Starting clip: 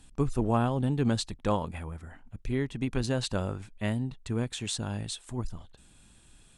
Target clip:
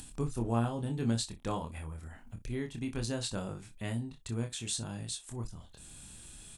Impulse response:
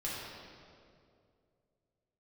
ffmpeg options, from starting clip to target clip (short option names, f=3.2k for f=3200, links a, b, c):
-filter_complex "[0:a]highshelf=f=5k:g=11,asplit=2[a][b];[b]aecho=0:1:26|60:0.596|0.15[c];[a][c]amix=inputs=2:normalize=0,acompressor=mode=upward:threshold=-30dB:ratio=2.5,equalizer=f=140:t=o:w=2.6:g=2.5,volume=-9dB"